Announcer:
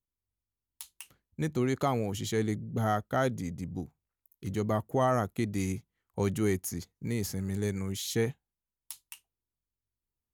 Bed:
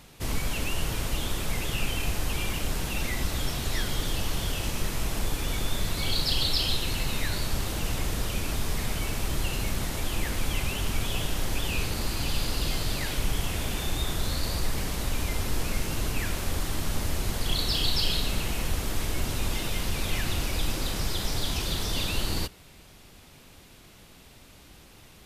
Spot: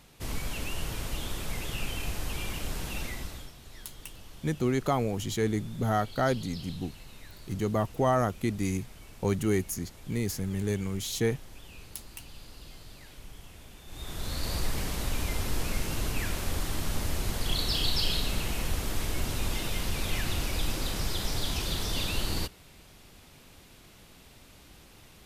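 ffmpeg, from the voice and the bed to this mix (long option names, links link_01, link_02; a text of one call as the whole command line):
ffmpeg -i stem1.wav -i stem2.wav -filter_complex "[0:a]adelay=3050,volume=1.5dB[link_01];[1:a]volume=12.5dB,afade=type=out:start_time=2.97:duration=0.55:silence=0.188365,afade=type=in:start_time=13.86:duration=0.69:silence=0.133352[link_02];[link_01][link_02]amix=inputs=2:normalize=0" out.wav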